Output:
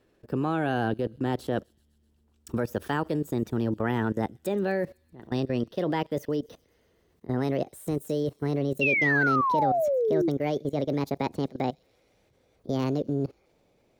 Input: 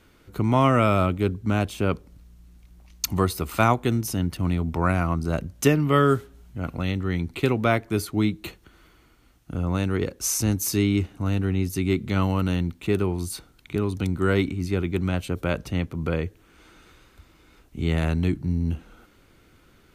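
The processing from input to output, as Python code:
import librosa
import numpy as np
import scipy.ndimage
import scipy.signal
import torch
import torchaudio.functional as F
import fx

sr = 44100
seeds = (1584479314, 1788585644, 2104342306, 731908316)

y = fx.speed_glide(x, sr, from_pct=119, to_pct=166)
y = fx.peak_eq(y, sr, hz=410.0, db=10.0, octaves=2.7)
y = fx.level_steps(y, sr, step_db=20)
y = fx.spec_paint(y, sr, seeds[0], shape='fall', start_s=8.81, length_s=1.48, low_hz=320.0, high_hz=2800.0, level_db=-18.0)
y = fx.echo_wet_highpass(y, sr, ms=127, feedback_pct=67, hz=5300.0, wet_db=-20.0)
y = F.gain(torch.from_numpy(y), -6.5).numpy()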